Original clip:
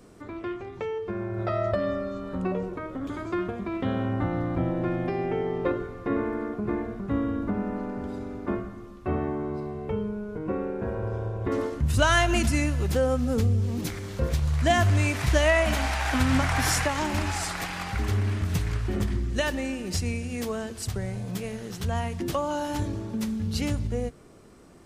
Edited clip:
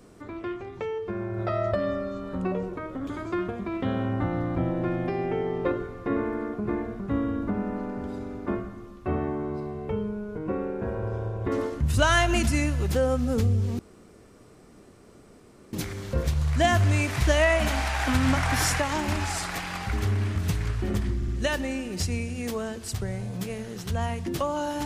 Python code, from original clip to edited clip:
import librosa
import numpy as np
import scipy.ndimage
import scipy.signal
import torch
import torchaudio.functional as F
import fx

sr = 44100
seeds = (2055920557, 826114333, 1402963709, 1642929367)

y = fx.edit(x, sr, fx.insert_room_tone(at_s=13.79, length_s=1.94),
    fx.stutter(start_s=19.22, slice_s=0.06, count=3), tone=tone)